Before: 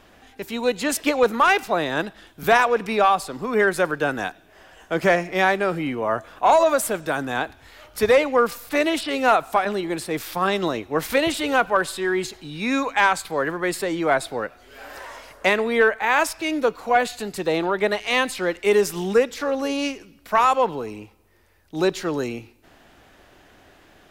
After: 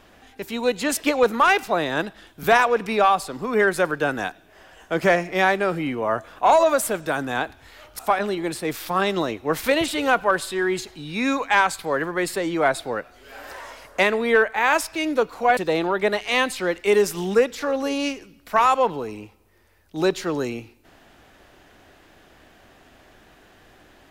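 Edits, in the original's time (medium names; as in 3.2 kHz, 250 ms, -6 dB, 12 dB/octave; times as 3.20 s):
7.99–9.45 s: delete
17.03–17.36 s: delete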